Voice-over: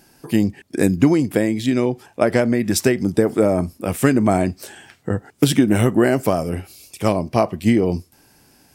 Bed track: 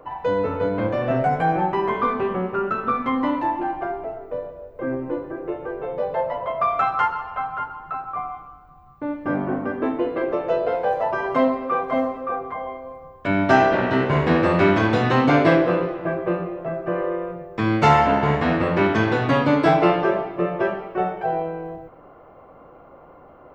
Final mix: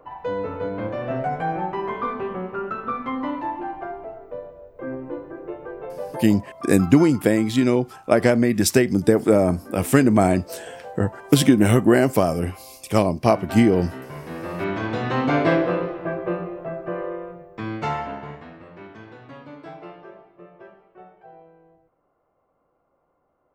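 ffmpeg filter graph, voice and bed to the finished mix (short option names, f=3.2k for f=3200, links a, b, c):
-filter_complex "[0:a]adelay=5900,volume=0dB[a];[1:a]volume=9dB,afade=t=out:st=5.87:d=0.64:silence=0.266073,afade=t=in:st=14.31:d=1.2:silence=0.199526,afade=t=out:st=16.53:d=1.98:silence=0.0944061[b];[a][b]amix=inputs=2:normalize=0"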